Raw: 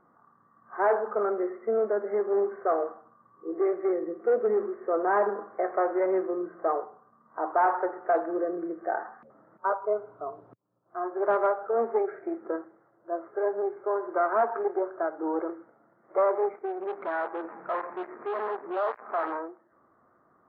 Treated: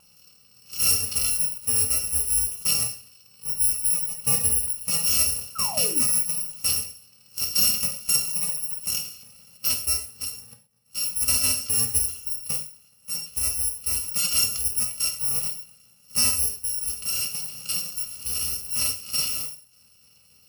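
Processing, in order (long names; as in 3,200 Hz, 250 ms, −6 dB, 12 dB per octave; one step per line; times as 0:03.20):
samples in bit-reversed order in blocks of 128 samples
in parallel at −1 dB: downward compressor, threshold −39 dBFS, peak gain reduction 18 dB
on the sum: sound drawn into the spectrogram fall, 0:05.55–0:06.05, 210–1,400 Hz −37 dBFS
reverb whose tail is shaped and stops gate 150 ms falling, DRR 2.5 dB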